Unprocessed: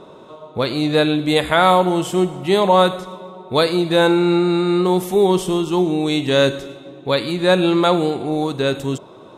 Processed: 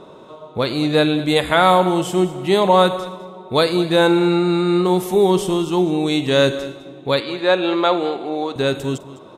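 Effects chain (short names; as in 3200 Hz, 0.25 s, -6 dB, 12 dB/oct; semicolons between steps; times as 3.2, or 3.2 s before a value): 7.2–8.56 BPF 360–4500 Hz; echo 0.206 s -16.5 dB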